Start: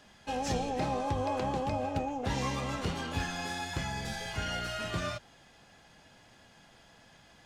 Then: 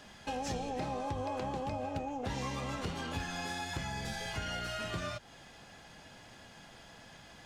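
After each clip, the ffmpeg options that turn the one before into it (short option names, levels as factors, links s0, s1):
-af "acompressor=threshold=0.00708:ratio=2.5,volume=1.68"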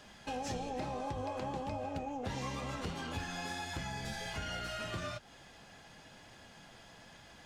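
-af "flanger=delay=1.6:depth=7.9:regen=-70:speed=1.1:shape=triangular,volume=1.33"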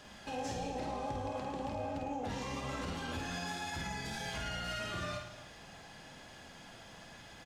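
-filter_complex "[0:a]alimiter=level_in=2.99:limit=0.0631:level=0:latency=1:release=64,volume=0.335,asplit=2[s0][s1];[s1]aecho=0:1:50|107.5|173.6|249.7|337.1:0.631|0.398|0.251|0.158|0.1[s2];[s0][s2]amix=inputs=2:normalize=0,volume=1.12"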